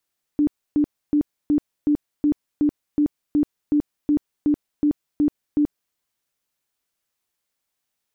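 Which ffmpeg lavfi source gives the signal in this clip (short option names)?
-f lavfi -i "aevalsrc='0.188*sin(2*PI*295*mod(t,0.37))*lt(mod(t,0.37),24/295)':d=5.55:s=44100"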